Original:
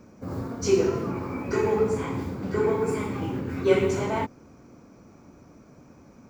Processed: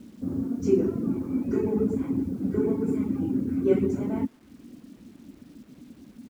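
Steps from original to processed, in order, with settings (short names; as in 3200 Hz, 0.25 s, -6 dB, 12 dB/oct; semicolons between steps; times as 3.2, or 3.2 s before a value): ten-band EQ 125 Hz -5 dB, 250 Hz +12 dB, 500 Hz -6 dB, 1000 Hz -10 dB, 2000 Hz -4 dB, 4000 Hz -10 dB; speakerphone echo 0.12 s, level -20 dB; reverb removal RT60 0.54 s; high shelf 2000 Hz -11.5 dB; bit-crush 10-bit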